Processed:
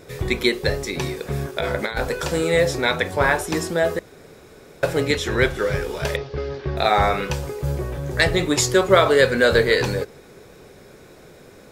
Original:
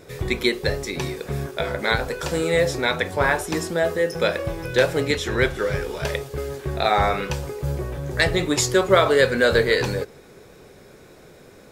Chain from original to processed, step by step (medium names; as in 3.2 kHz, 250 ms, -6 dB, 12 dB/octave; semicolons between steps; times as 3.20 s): 1.56–2.24 s: compressor with a negative ratio -24 dBFS, ratio -0.5; 3.99–4.83 s: room tone; 6.16–6.77 s: steep low-pass 5.5 kHz 48 dB/octave; trim +1.5 dB